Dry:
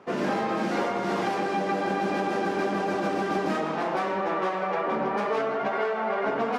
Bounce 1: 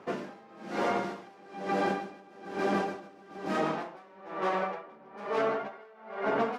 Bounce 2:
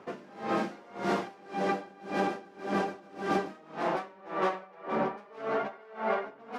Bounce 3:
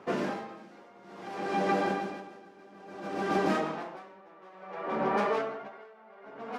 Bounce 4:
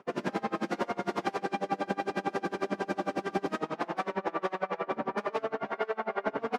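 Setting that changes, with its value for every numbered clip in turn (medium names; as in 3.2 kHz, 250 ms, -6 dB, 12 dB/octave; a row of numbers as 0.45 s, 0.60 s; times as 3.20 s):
logarithmic tremolo, rate: 1.1 Hz, 1.8 Hz, 0.58 Hz, 11 Hz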